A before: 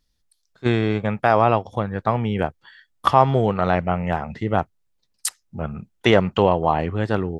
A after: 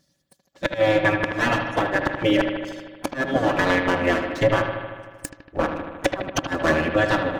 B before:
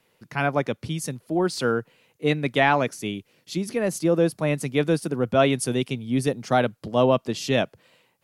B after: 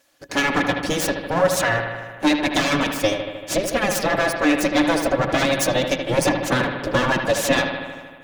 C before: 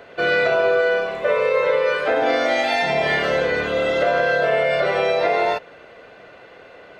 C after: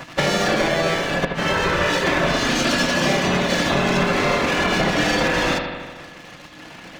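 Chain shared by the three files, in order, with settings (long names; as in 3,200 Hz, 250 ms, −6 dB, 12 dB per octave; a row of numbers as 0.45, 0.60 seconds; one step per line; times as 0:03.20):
lower of the sound and its delayed copy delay 5.2 ms
reverb reduction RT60 0.54 s
gate on every frequency bin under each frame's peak −10 dB weak
graphic EQ with 15 bands 160 Hz +10 dB, 630 Hz +4 dB, 6,300 Hz +6 dB
leveller curve on the samples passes 1
downward compressor 8 to 1, threshold −28 dBFS
gate with flip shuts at −18 dBFS, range −25 dB
hollow resonant body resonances 300/550/1,700 Hz, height 12 dB, ringing for 70 ms
on a send: bucket-brigade delay 77 ms, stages 2,048, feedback 71%, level −7.5 dB
on the sum: normalise the peak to −6 dBFS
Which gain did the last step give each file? +8.0, +9.0, +8.5 decibels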